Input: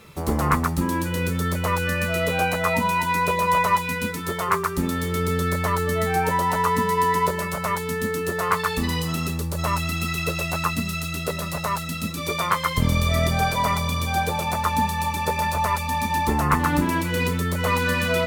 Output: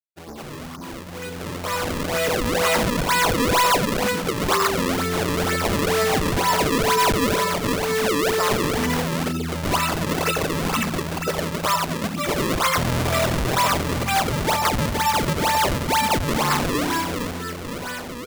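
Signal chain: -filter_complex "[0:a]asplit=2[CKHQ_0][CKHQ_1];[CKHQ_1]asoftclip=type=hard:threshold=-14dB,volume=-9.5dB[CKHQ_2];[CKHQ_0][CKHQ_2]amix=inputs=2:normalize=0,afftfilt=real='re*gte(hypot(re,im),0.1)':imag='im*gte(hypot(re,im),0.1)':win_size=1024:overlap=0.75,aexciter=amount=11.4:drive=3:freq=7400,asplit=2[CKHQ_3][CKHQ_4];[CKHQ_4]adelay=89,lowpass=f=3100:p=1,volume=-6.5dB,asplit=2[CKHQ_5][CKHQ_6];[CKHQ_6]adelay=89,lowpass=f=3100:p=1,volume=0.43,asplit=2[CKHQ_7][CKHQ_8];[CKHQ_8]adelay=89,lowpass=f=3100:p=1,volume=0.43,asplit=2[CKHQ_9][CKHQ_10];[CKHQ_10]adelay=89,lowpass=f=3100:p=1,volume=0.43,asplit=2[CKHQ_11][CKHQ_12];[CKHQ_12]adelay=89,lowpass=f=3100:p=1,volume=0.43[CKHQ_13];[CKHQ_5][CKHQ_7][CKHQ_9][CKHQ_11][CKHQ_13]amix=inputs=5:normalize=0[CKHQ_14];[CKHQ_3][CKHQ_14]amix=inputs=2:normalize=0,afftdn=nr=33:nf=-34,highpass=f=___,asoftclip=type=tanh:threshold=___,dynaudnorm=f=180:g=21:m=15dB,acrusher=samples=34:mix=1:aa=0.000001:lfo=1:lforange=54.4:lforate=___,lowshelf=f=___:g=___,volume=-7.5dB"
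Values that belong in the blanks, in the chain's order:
100, -21.5dB, 2.1, 400, -6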